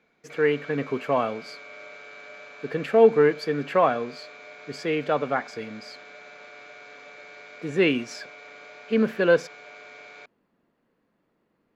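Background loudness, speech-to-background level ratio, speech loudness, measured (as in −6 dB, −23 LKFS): −43.5 LKFS, 20.0 dB, −23.5 LKFS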